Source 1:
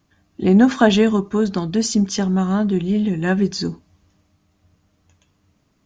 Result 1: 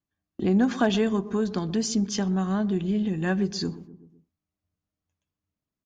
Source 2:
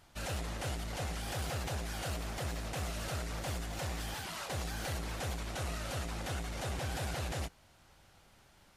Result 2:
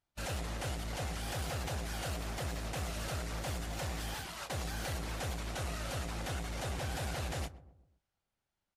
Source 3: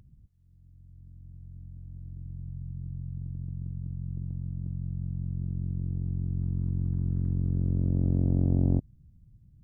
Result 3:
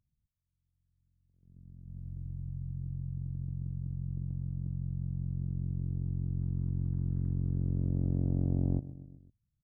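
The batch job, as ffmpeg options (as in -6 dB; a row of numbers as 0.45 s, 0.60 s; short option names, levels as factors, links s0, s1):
-filter_complex "[0:a]agate=range=0.0447:threshold=0.00891:ratio=16:detection=peak,asplit=2[s0][s1];[s1]adelay=126,lowpass=f=830:p=1,volume=0.15,asplit=2[s2][s3];[s3]adelay=126,lowpass=f=830:p=1,volume=0.49,asplit=2[s4][s5];[s5]adelay=126,lowpass=f=830:p=1,volume=0.49,asplit=2[s6][s7];[s7]adelay=126,lowpass=f=830:p=1,volume=0.49[s8];[s2][s4][s6][s8]amix=inputs=4:normalize=0[s9];[s0][s9]amix=inputs=2:normalize=0,acompressor=threshold=0.0112:ratio=1.5,asoftclip=type=hard:threshold=0.2,volume=1.19"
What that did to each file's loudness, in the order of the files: -7.5 LU, 0.0 LU, -4.0 LU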